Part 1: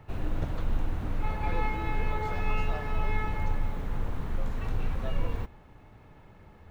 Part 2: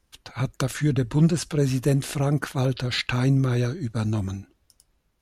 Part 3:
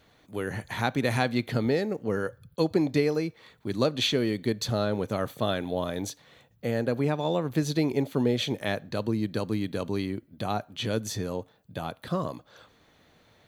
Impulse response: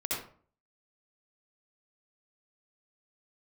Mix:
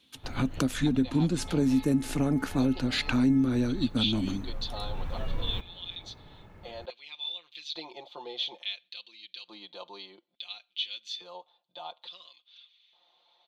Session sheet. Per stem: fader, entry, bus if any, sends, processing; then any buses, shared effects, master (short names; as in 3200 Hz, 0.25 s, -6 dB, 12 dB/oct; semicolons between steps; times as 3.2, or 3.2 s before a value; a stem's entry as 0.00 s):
+1.0 dB, 0.15 s, no send, auto duck -8 dB, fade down 0.30 s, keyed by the second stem
0.0 dB, 0.00 s, no send, HPF 130 Hz; bell 260 Hz +15 dB 0.43 oct
-7.5 dB, 0.00 s, no send, EQ curve 330 Hz 0 dB, 990 Hz -5 dB, 1700 Hz -16 dB, 3600 Hz +8 dB, 9900 Hz -27 dB; LFO high-pass square 0.58 Hz 870–2400 Hz; comb 5.7 ms, depth 90%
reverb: off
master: compressor 2.5:1, threshold -26 dBFS, peak gain reduction 11.5 dB